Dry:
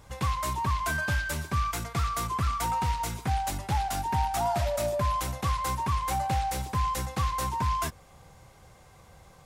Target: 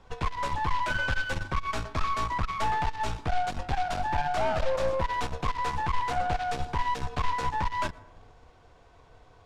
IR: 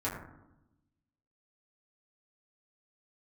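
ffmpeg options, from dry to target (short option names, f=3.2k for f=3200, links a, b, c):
-filter_complex "[0:a]lowpass=3.9k,bandreject=f=2.1k:w=14,afreqshift=-56,asplit=2[a][b];[b]aeval=exprs='sgn(val(0))*max(abs(val(0))-0.00501,0)':c=same,volume=-10.5dB[c];[a][c]amix=inputs=2:normalize=0,aeval=exprs='(tanh(22.4*val(0)+0.8)-tanh(0.8))/22.4':c=same,asplit=2[d][e];[1:a]atrim=start_sample=2205,adelay=112[f];[e][f]afir=irnorm=-1:irlink=0,volume=-26dB[g];[d][g]amix=inputs=2:normalize=0,volume=4dB"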